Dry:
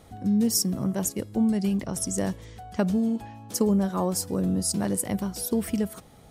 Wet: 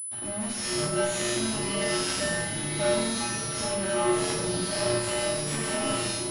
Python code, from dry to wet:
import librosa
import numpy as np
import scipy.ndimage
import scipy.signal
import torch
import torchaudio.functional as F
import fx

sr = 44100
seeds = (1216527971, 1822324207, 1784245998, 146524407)

p1 = fx.highpass(x, sr, hz=76.0, slope=6)
p2 = fx.tilt_eq(p1, sr, slope=3.0)
p3 = fx.quant_dither(p2, sr, seeds[0], bits=6, dither='none')
p4 = p2 + (p3 * librosa.db_to_amplitude(-5.0))
p5 = fx.tremolo_random(p4, sr, seeds[1], hz=3.5, depth_pct=55)
p6 = fx.comb_fb(p5, sr, f0_hz=120.0, decay_s=0.69, harmonics='all', damping=0.0, mix_pct=80)
p7 = fx.fuzz(p6, sr, gain_db=54.0, gate_db=-57.0)
p8 = fx.comb_fb(p7, sr, f0_hz=120.0, decay_s=0.24, harmonics='odd', damping=0.0, mix_pct=90)
p9 = p8 + fx.echo_swing(p8, sr, ms=1086, ratio=3, feedback_pct=51, wet_db=-12, dry=0)
p10 = fx.echo_pitch(p9, sr, ms=408, semitones=-5, count=2, db_per_echo=-6.0)
p11 = fx.room_shoebox(p10, sr, seeds[2], volume_m3=770.0, walls='furnished', distance_m=2.6)
p12 = fx.pwm(p11, sr, carrier_hz=10000.0)
y = p12 * librosa.db_to_amplitude(-7.5)